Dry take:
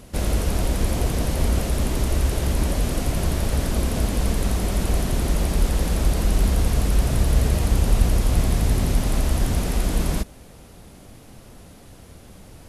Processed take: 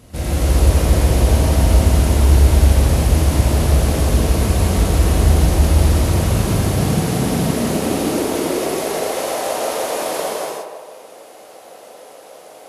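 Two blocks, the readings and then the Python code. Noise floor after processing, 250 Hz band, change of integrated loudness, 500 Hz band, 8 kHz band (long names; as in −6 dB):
−41 dBFS, +6.5 dB, +6.5 dB, +9.5 dB, +6.0 dB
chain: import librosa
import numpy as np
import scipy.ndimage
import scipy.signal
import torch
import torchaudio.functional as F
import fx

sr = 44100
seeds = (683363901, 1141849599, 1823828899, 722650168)

y = fx.echo_banded(x, sr, ms=160, feedback_pct=49, hz=720.0, wet_db=-4.0)
y = fx.rev_gated(y, sr, seeds[0], gate_ms=440, shape='flat', drr_db=-8.0)
y = fx.filter_sweep_highpass(y, sr, from_hz=67.0, to_hz=560.0, start_s=5.67, end_s=9.26, q=2.6)
y = F.gain(torch.from_numpy(y), -3.0).numpy()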